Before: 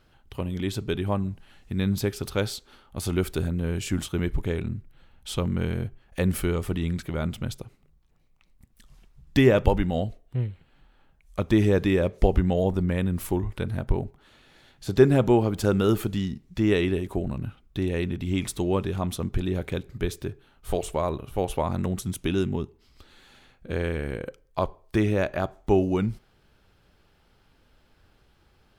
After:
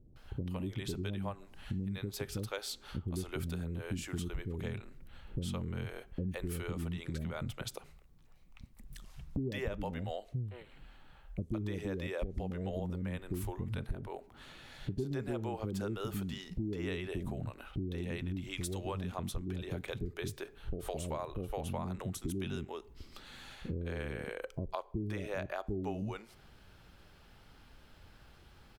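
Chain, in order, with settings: 18.32–18.93 s: peaking EQ 790 Hz -> 130 Hz -8.5 dB 1.6 oct; bands offset in time lows, highs 160 ms, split 420 Hz; compression 6:1, threshold -39 dBFS, peak gain reduction 24 dB; trim +3.5 dB

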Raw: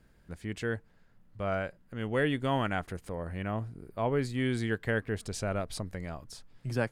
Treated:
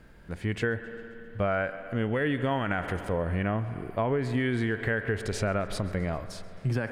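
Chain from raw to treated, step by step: tone controls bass -3 dB, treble -7 dB; spring tank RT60 3.3 s, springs 56 ms, chirp 70 ms, DRR 17.5 dB; dynamic bell 1.7 kHz, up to +5 dB, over -46 dBFS, Q 1.7; peak limiter -23 dBFS, peak gain reduction 9 dB; harmonic-percussive split harmonic +7 dB; on a send: thinning echo 133 ms, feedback 62%, level -20.5 dB; on the sum: compression, threshold -31 dBFS, peak gain reduction 9.5 dB; trim +7 dB

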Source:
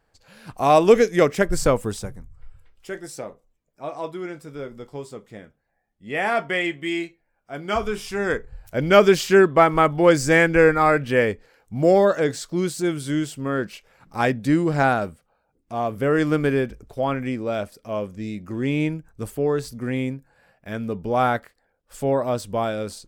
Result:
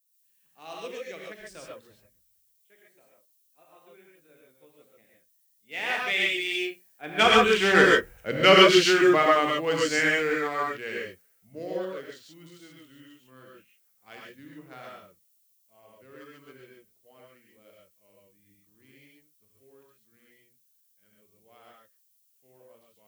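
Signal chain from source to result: local Wiener filter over 9 samples; Doppler pass-by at 7.52 s, 23 m/s, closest 7.8 m; frequency weighting D; added noise violet -66 dBFS; hum notches 60/120/180/240 Hz; gated-style reverb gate 160 ms rising, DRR -2.5 dB; three bands expanded up and down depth 40%

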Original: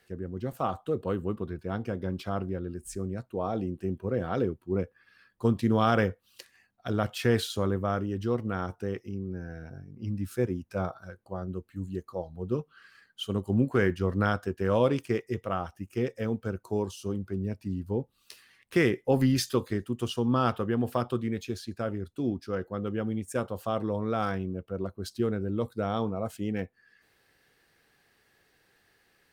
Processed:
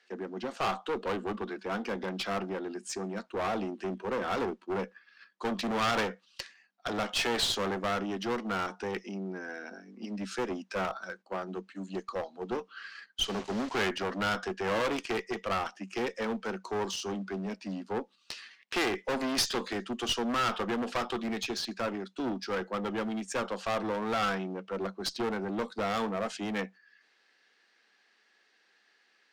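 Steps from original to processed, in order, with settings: saturation -28 dBFS, distortion -8 dB; tilt shelf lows -6 dB, about 800 Hz; gate -54 dBFS, range -10 dB; Chebyshev high-pass 190 Hz, order 8; 13.22–13.89 s: word length cut 8-bit, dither none; low-pass 6.3 kHz 24 dB/octave; one-sided clip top -38.5 dBFS; trim +7 dB

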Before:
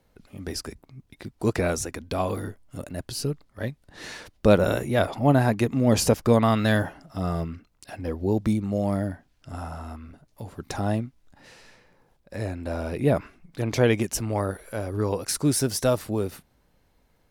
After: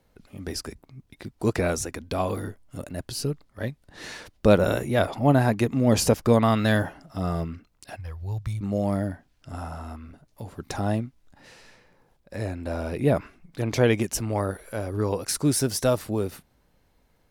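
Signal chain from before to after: 7.96–8.61 s: FFT filter 130 Hz 0 dB, 240 Hz -29 dB, 1.1 kHz -5 dB

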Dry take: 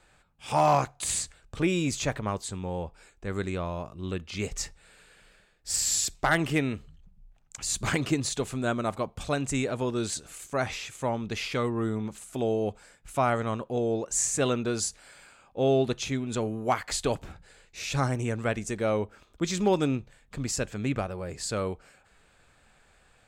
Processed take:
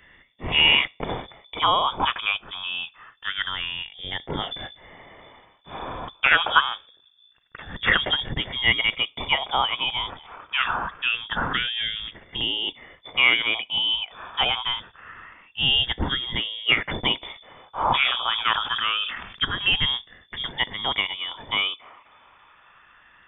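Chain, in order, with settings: drifting ripple filter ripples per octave 0.81, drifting -0.25 Hz, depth 12 dB; tilt shelf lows -9 dB, about 1.1 kHz; frequency inversion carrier 3.5 kHz; 17.82–19.42 s: decay stretcher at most 57 dB/s; trim +6 dB

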